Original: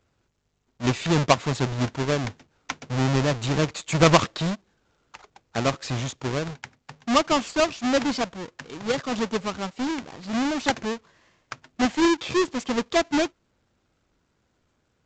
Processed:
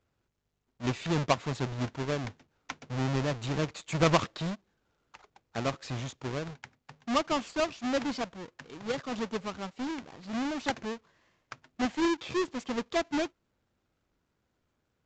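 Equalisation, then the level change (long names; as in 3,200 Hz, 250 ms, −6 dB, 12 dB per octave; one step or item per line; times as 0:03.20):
high-shelf EQ 6,500 Hz −5.5 dB
−7.5 dB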